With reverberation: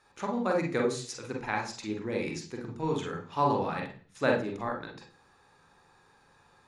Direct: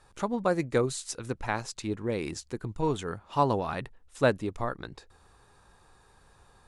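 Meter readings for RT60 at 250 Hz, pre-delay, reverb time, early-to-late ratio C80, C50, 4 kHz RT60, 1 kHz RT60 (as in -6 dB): 0.55 s, 37 ms, 0.40 s, 12.5 dB, 5.5 dB, 0.50 s, 0.35 s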